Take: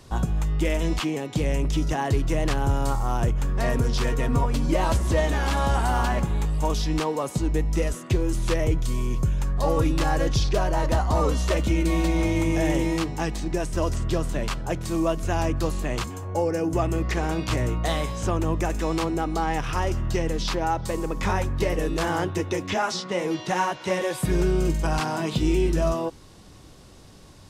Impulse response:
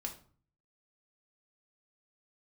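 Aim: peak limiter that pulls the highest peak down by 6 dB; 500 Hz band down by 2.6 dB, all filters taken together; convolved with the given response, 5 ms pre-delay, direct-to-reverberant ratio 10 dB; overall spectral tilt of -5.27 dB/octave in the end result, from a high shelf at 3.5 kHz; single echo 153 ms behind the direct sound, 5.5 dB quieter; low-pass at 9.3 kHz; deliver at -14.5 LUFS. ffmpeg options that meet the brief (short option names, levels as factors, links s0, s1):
-filter_complex "[0:a]lowpass=9300,equalizer=f=500:t=o:g=-3.5,highshelf=f=3500:g=3,alimiter=limit=0.126:level=0:latency=1,aecho=1:1:153:0.531,asplit=2[s0][s1];[1:a]atrim=start_sample=2205,adelay=5[s2];[s1][s2]afir=irnorm=-1:irlink=0,volume=0.355[s3];[s0][s3]amix=inputs=2:normalize=0,volume=3.98"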